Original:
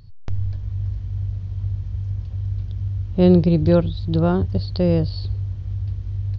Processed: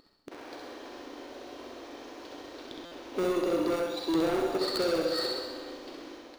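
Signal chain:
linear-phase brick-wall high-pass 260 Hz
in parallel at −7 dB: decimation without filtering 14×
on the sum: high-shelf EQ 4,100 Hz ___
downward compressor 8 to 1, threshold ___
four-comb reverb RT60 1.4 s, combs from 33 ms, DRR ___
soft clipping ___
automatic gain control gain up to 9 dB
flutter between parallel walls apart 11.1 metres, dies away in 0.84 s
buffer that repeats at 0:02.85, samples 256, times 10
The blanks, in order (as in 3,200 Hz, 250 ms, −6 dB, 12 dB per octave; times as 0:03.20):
−2 dB, −30 dBFS, 4.5 dB, −34.5 dBFS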